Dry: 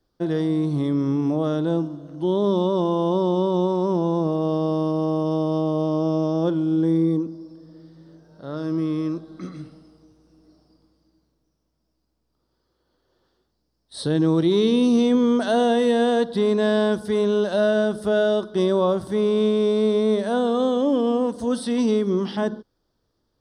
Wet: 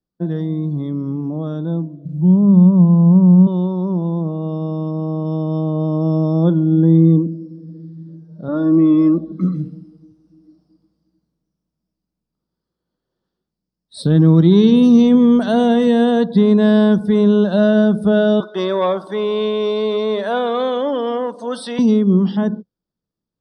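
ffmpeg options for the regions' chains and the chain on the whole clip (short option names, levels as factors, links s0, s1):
-filter_complex "[0:a]asettb=1/sr,asplit=3[s0][s1][s2];[s0]atrim=end=2.054[s3];[s1]atrim=start=2.05:end=3.47,asetpts=PTS-STARTPTS,afade=t=in:d=0.004:c=qsin,afade=t=out:st=1.416:d=0.004:c=qsin,lowpass=f=2500:w=0.5412,lowpass=f=2500:w=1.3066,lowshelf=f=220:t=q:w=1.5:g=11.5,acrusher=bits=7:mix=0:aa=0.5[s4];[s2]atrim=start=3.466[s5];[s3][s4]acrossfade=d=0.004:c1=hsin:c2=qsin[s6];[s6][s5]acrossfade=d=0.004:c1=qsin:c2=hsin,asettb=1/sr,asplit=3[s7][s8][s9];[s7]atrim=end=8.484[s10];[s8]atrim=start=8.48:end=9.32,asetpts=PTS-STARTPTS,afade=t=in:d=0.004:c=qsin,afade=t=out:st=0.836:d=0.004:c=qsin,bass=f=250:g=2,treble=f=4000:g=-9,aecho=1:1:3.5:0.89,atrim=end_sample=37044[s11];[s9]atrim=start=9.316[s12];[s10][s11]acrossfade=d=0.004:c1=hsin:c2=qsin[s13];[s13][s12]acrossfade=d=0.004:c1=qsin:c2=hsin,asettb=1/sr,asplit=3[s14][s15][s16];[s14]atrim=end=14.024[s17];[s15]atrim=start=14.02:end=15.87,asetpts=PTS-STARTPTS,afade=t=in:d=0.004:c=qsin,afade=t=out:st=1.846:d=0.004:c=qsin,lowshelf=f=68:g=7.5,aeval=exprs='sgn(val(0))*max(abs(val(0))-0.00841,0)':c=same[s18];[s16]atrim=start=15.866[s19];[s17][s18]acrossfade=d=0.004:c1=hsin:c2=qsin[s20];[s20][s19]acrossfade=d=0.004:c1=qsin:c2=hsin,asettb=1/sr,asplit=3[s21][s22][s23];[s21]atrim=end=18.404[s24];[s22]atrim=start=18.4:end=21.79,asetpts=PTS-STARTPTS,afade=t=in:d=0.004:c=qsin,afade=t=out:st=3.386:d=0.004:c=qsin,asplit=2[s25][s26];[s26]highpass=f=720:p=1,volume=3.16,asoftclip=type=tanh:threshold=0.282[s27];[s25][s27]amix=inputs=2:normalize=0,lowpass=f=4500:p=1,volume=0.501,highpass=440[s28];[s23]atrim=start=21.786[s29];[s24][s28]acrossfade=d=0.004:c1=hsin:c2=qsin[s30];[s30][s29]acrossfade=d=0.004:c1=qsin:c2=hsin,afftdn=nr=15:nf=-42,equalizer=f=180:t=o:w=0.75:g=13.5,dynaudnorm=f=380:g=13:m=3.76,volume=0.891"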